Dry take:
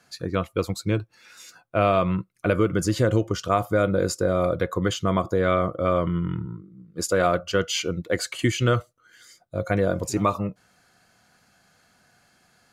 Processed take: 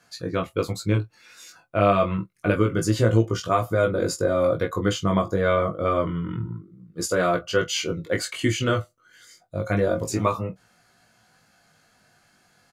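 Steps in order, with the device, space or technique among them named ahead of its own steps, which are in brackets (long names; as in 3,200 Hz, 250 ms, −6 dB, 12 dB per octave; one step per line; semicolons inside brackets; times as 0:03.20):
double-tracked vocal (double-tracking delay 26 ms −12 dB; chorus effect 0.28 Hz, delay 17.5 ms, depth 2.5 ms)
level +3 dB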